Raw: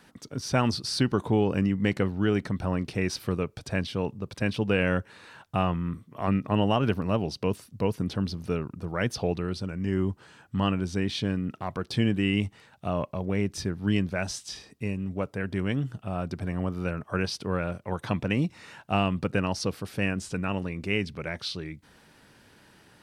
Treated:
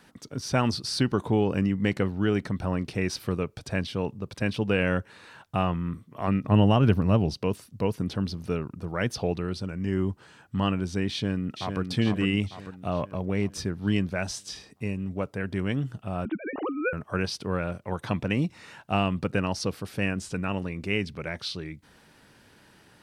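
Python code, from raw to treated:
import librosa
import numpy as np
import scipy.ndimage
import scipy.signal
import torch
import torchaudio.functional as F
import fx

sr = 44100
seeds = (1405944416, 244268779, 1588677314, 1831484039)

y = fx.low_shelf(x, sr, hz=200.0, db=10.0, at=(6.44, 7.34))
y = fx.echo_throw(y, sr, start_s=11.11, length_s=0.69, ms=450, feedback_pct=55, wet_db=-6.0)
y = fx.sine_speech(y, sr, at=(16.25, 16.93))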